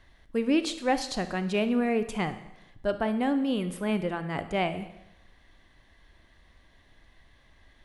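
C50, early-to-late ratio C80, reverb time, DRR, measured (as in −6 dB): 12.0 dB, 14.5 dB, 0.85 s, 10.5 dB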